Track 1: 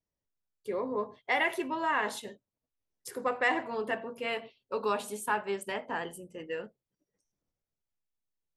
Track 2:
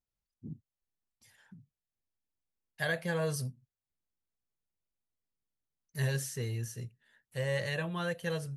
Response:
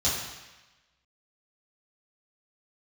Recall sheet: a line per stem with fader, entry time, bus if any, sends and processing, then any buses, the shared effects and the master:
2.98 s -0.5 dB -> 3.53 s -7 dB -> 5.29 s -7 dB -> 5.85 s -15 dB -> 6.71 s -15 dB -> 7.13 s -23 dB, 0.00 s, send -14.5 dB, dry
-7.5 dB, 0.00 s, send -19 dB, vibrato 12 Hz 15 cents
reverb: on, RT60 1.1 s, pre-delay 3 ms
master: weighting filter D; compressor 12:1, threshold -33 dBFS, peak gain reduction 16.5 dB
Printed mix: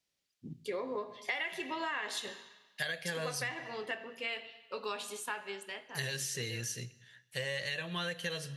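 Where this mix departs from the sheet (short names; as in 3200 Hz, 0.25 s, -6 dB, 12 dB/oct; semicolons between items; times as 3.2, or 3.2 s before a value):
stem 2 -7.5 dB -> +1.0 dB; reverb return -7.5 dB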